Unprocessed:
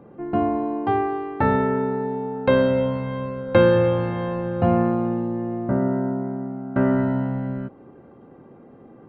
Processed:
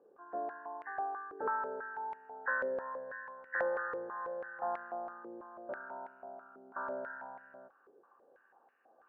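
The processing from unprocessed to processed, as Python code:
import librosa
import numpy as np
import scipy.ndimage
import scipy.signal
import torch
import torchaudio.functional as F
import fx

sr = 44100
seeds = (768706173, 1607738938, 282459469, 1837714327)

y = fx.freq_compress(x, sr, knee_hz=1500.0, ratio=4.0)
y = np.diff(y, prepend=0.0)
y = fx.filter_held_bandpass(y, sr, hz=6.1, low_hz=440.0, high_hz=2100.0)
y = y * librosa.db_to_amplitude(13.5)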